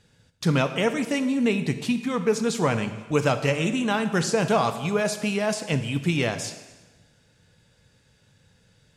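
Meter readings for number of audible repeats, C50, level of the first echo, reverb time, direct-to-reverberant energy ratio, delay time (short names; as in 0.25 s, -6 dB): none, 10.5 dB, none, 1.2 s, 9.0 dB, none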